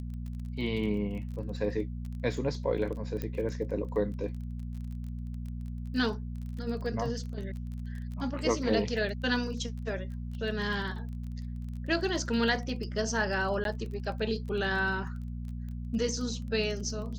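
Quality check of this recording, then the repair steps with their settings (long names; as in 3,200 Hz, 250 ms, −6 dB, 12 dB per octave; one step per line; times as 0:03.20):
surface crackle 23 per second −39 dBFS
mains hum 60 Hz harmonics 4 −37 dBFS
0:03.22: click −21 dBFS
0:13.64–0:13.65: drop-out 12 ms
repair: click removal
hum removal 60 Hz, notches 4
repair the gap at 0:13.64, 12 ms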